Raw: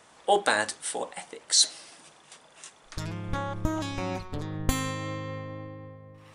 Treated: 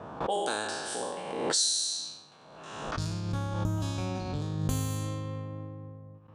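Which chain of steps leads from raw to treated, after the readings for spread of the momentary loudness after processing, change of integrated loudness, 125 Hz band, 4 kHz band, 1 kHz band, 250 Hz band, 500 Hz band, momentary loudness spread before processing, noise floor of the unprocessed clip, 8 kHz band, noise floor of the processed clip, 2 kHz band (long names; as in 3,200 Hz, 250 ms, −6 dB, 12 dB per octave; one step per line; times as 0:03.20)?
18 LU, −3.0 dB, +3.5 dB, −3.0 dB, −4.5 dB, −1.0 dB, −3.0 dB, 22 LU, −57 dBFS, −2.5 dB, −53 dBFS, −7.5 dB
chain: peak hold with a decay on every bin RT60 1.46 s
downward compressor 2.5 to 1, threshold −25 dBFS, peak gain reduction 8.5 dB
noise gate with hold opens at −40 dBFS
bass and treble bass +6 dB, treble +4 dB
low-pass that shuts in the quiet parts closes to 1,100 Hz, open at −19.5 dBFS
high-pass filter 68 Hz 12 dB per octave
parametric band 2,000 Hz −12 dB 0.29 octaves
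background raised ahead of every attack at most 42 dB per second
level −5 dB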